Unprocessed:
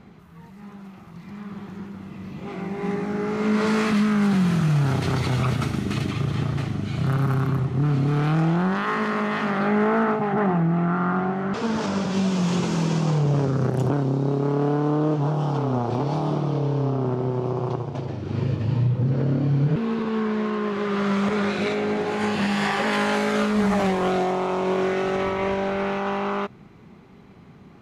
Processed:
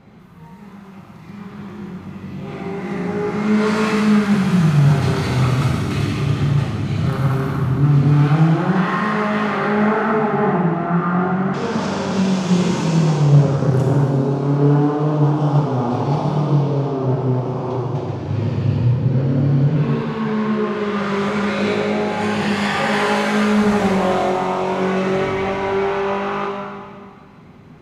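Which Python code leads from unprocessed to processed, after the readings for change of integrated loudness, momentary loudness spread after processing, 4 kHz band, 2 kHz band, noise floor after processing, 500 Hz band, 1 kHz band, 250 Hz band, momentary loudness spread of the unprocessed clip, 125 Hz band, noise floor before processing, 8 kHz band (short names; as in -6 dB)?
+5.0 dB, 9 LU, +4.5 dB, +4.5 dB, -40 dBFS, +4.5 dB, +5.0 dB, +5.0 dB, 8 LU, +6.5 dB, -47 dBFS, +4.5 dB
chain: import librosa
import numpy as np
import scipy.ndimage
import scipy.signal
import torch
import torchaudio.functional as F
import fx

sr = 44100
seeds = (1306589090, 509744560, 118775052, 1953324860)

y = fx.rev_plate(x, sr, seeds[0], rt60_s=2.0, hf_ratio=0.9, predelay_ms=0, drr_db=-3.0)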